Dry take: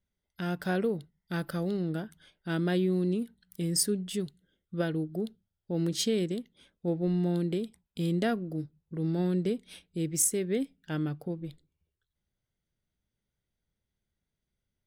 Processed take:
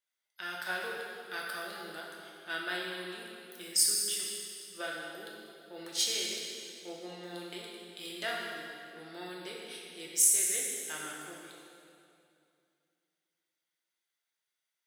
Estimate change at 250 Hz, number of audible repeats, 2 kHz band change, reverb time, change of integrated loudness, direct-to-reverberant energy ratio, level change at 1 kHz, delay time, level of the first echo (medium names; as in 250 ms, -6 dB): -18.5 dB, no echo, +4.5 dB, 2.5 s, -1.0 dB, -3.5 dB, -1.0 dB, no echo, no echo